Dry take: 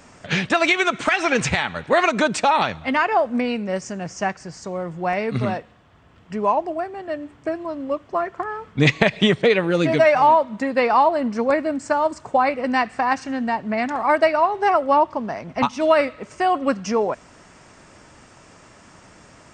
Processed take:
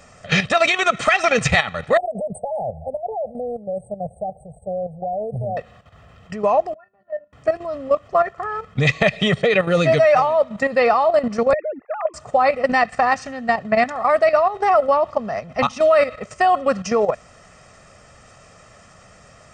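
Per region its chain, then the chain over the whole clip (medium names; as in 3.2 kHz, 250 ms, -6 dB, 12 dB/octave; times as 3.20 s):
1.97–5.57 s: compression 3:1, threshold -21 dBFS + brick-wall FIR band-stop 890–7900 Hz + static phaser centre 1.5 kHz, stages 8
6.74–7.33 s: low-pass 1.7 kHz + feedback comb 200 Hz, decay 0.15 s, harmonics odd, mix 100% + upward expansion, over -46 dBFS
11.53–12.14 s: formants replaced by sine waves + compression 3:1, threshold -23 dBFS + three bands expanded up and down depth 40%
whole clip: level held to a coarse grid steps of 11 dB; comb 1.6 ms, depth 68%; trim +5.5 dB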